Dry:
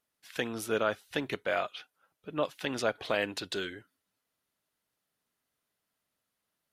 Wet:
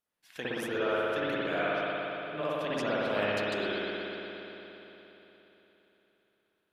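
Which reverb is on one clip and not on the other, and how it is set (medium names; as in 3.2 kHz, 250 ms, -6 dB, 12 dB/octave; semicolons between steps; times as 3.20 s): spring tank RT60 3.7 s, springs 58 ms, chirp 70 ms, DRR -9.5 dB; trim -7.5 dB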